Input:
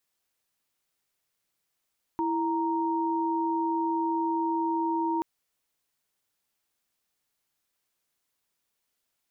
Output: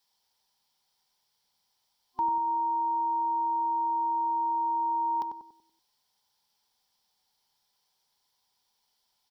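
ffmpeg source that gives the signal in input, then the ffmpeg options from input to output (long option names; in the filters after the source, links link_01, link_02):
-f lavfi -i "aevalsrc='0.0422*(sin(2*PI*329.63*t)+sin(2*PI*932.33*t))':duration=3.03:sample_rate=44100"
-filter_complex "[0:a]superequalizer=6b=0.501:9b=3.55:13b=2.51:14b=3.55,alimiter=limit=-22dB:level=0:latency=1:release=345,asplit=2[link_01][link_02];[link_02]adelay=95,lowpass=frequency=960:poles=1,volume=-4dB,asplit=2[link_03][link_04];[link_04]adelay=95,lowpass=frequency=960:poles=1,volume=0.48,asplit=2[link_05][link_06];[link_06]adelay=95,lowpass=frequency=960:poles=1,volume=0.48,asplit=2[link_07][link_08];[link_08]adelay=95,lowpass=frequency=960:poles=1,volume=0.48,asplit=2[link_09][link_10];[link_10]adelay=95,lowpass=frequency=960:poles=1,volume=0.48,asplit=2[link_11][link_12];[link_12]adelay=95,lowpass=frequency=960:poles=1,volume=0.48[link_13];[link_01][link_03][link_05][link_07][link_09][link_11][link_13]amix=inputs=7:normalize=0"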